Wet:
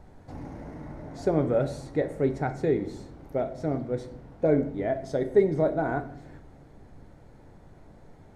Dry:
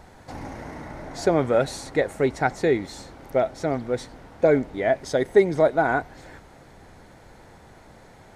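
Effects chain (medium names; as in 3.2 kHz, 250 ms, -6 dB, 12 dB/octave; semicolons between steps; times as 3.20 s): tilt shelf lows +6.5 dB, about 680 Hz; simulated room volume 99 m³, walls mixed, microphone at 0.35 m; trim -7.5 dB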